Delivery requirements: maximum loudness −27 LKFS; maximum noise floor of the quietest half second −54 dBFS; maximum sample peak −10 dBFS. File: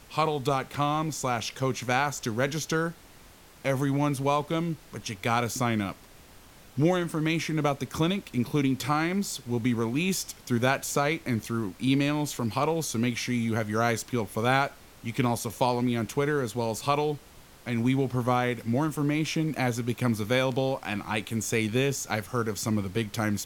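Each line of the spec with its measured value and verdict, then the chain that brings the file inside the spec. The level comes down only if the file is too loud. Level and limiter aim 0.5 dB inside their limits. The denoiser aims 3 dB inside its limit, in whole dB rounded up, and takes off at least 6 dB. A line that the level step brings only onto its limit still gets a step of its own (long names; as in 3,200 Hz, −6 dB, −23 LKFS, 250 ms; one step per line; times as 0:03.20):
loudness −28.0 LKFS: in spec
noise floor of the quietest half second −52 dBFS: out of spec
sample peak −9.0 dBFS: out of spec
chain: broadband denoise 6 dB, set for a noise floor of −52 dBFS
brickwall limiter −10.5 dBFS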